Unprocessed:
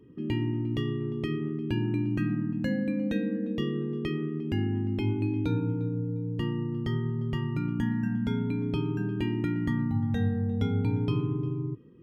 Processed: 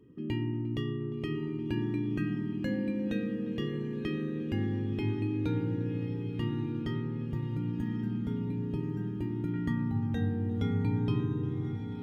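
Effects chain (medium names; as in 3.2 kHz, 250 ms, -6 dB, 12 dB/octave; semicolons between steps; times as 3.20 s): 7.26–9.54 s: peaking EQ 2.5 kHz -13.5 dB 2.8 oct; echo that smears into a reverb 1134 ms, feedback 56%, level -9 dB; trim -3.5 dB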